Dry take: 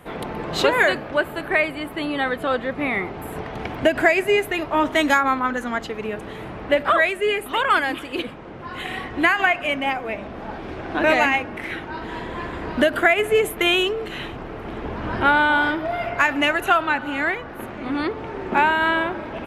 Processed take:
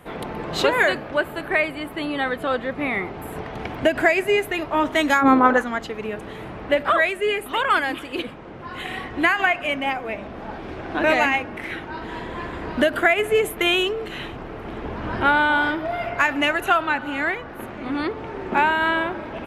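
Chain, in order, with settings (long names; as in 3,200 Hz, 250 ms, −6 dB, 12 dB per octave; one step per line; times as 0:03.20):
0:05.21–0:05.61: parametric band 180 Hz → 1,000 Hz +14 dB 2.5 octaves
level −1 dB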